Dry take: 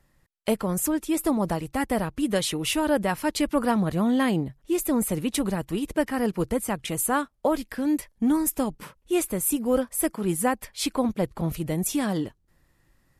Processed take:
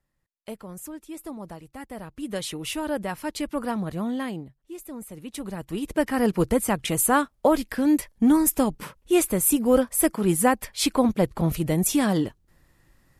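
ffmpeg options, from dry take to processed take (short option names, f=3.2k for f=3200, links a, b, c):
-af "volume=13dB,afade=t=in:st=1.94:d=0.52:silence=0.398107,afade=t=out:st=4.04:d=0.54:silence=0.354813,afade=t=in:st=5.14:d=0.38:silence=0.446684,afade=t=in:st=5.52:d=0.81:silence=0.281838"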